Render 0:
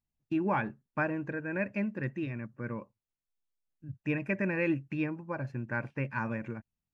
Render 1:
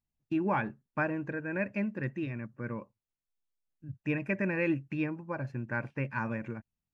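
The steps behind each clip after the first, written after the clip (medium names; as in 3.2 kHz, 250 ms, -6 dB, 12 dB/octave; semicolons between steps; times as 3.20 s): no audible change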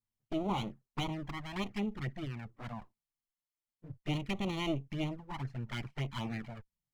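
comb filter that takes the minimum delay 0.95 ms; touch-sensitive flanger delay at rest 9.2 ms, full sweep at -31 dBFS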